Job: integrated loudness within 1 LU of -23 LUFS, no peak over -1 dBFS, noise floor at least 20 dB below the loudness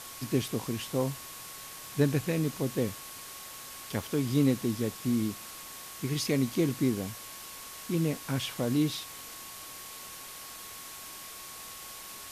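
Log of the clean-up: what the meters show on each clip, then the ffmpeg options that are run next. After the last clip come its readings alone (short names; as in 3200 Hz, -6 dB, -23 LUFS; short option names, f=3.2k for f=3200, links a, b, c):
steady tone 1100 Hz; tone level -52 dBFS; noise floor -45 dBFS; noise floor target -53 dBFS; loudness -33.0 LUFS; peak -12.5 dBFS; loudness target -23.0 LUFS
-> -af "bandreject=f=1.1k:w=30"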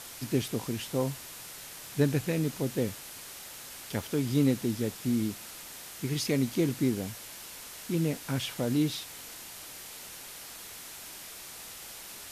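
steady tone none; noise floor -45 dBFS; noise floor target -53 dBFS
-> -af "afftdn=nr=8:nf=-45"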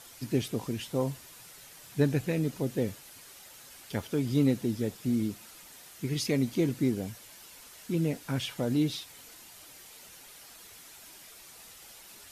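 noise floor -51 dBFS; loudness -31.0 LUFS; peak -12.5 dBFS; loudness target -23.0 LUFS
-> -af "volume=8dB"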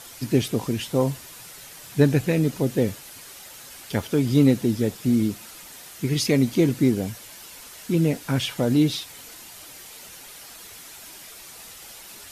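loudness -23.0 LUFS; peak -4.5 dBFS; noise floor -43 dBFS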